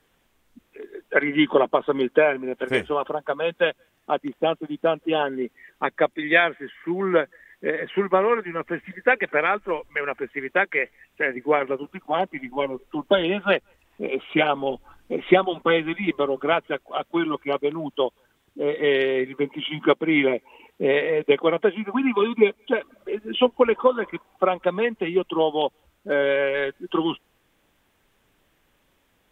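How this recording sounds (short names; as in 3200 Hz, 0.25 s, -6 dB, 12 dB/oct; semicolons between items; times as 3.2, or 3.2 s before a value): noise floor -66 dBFS; spectral tilt -2.5 dB/oct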